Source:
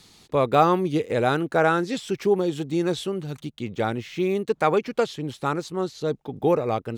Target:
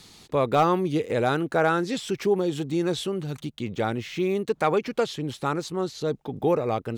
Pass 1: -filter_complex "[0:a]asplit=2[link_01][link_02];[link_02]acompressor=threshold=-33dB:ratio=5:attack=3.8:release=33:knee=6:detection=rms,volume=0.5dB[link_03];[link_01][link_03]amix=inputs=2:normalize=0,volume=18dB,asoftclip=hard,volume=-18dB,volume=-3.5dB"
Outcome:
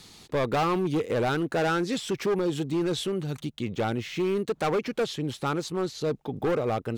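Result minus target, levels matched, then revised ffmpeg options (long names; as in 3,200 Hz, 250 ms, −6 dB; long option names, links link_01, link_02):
gain into a clipping stage and back: distortion +17 dB
-filter_complex "[0:a]asplit=2[link_01][link_02];[link_02]acompressor=threshold=-33dB:ratio=5:attack=3.8:release=33:knee=6:detection=rms,volume=0.5dB[link_03];[link_01][link_03]amix=inputs=2:normalize=0,volume=8.5dB,asoftclip=hard,volume=-8.5dB,volume=-3.5dB"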